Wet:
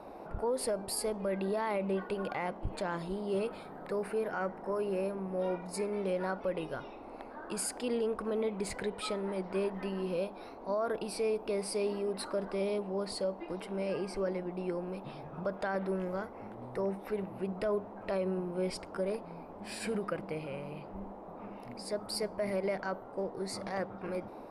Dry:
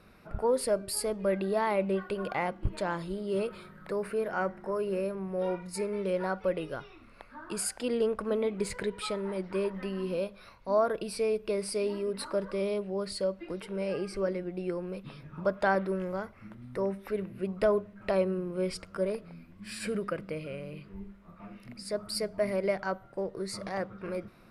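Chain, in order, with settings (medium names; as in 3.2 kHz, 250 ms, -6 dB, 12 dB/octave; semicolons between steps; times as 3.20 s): band noise 220–920 Hz -46 dBFS; peak limiter -22.5 dBFS, peak gain reduction 8.5 dB; trim -2 dB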